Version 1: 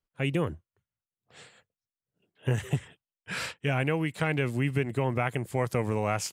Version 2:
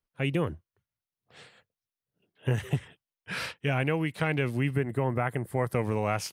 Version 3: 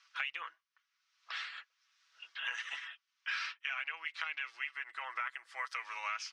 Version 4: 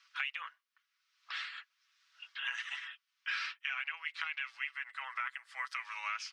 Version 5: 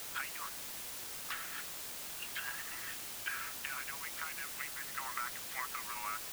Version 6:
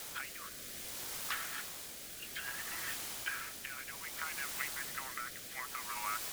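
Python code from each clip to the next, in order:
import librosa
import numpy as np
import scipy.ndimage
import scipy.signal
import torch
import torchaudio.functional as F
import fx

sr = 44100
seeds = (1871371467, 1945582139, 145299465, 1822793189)

y1 = fx.spec_box(x, sr, start_s=4.73, length_s=1.01, low_hz=2100.0, high_hz=7100.0, gain_db=-8)
y1 = fx.peak_eq(y1, sr, hz=7400.0, db=-10.5, octaves=0.26)
y2 = scipy.signal.sosfilt(scipy.signal.cheby1(3, 1.0, [1200.0, 5800.0], 'bandpass', fs=sr, output='sos'), y1)
y2 = y2 + 0.58 * np.pad(y2, (int(6.1 * sr / 1000.0), 0))[:len(y2)]
y2 = fx.band_squash(y2, sr, depth_pct=100)
y2 = F.gain(torch.from_numpy(y2), -3.5).numpy()
y3 = scipy.signal.sosfilt(scipy.signal.butter(2, 970.0, 'highpass', fs=sr, output='sos'), y2)
y3 = fx.peak_eq(y3, sr, hz=6000.0, db=-3.0, octaves=0.35)
y3 = F.gain(torch.from_numpy(y3), 1.0).numpy()
y4 = fx.env_lowpass_down(y3, sr, base_hz=1100.0, full_db=-38.0)
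y4 = fx.quant_dither(y4, sr, seeds[0], bits=8, dither='triangular')
y4 = F.gain(torch.from_numpy(y4), 3.5).numpy()
y5 = fx.notch(y4, sr, hz=2700.0, q=29.0)
y5 = fx.rotary(y5, sr, hz=0.6)
y5 = F.gain(torch.from_numpy(y5), 3.5).numpy()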